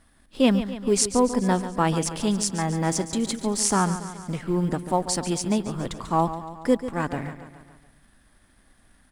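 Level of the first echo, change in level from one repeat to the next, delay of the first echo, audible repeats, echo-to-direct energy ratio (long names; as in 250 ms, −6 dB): −12.0 dB, −4.5 dB, 141 ms, 5, −10.0 dB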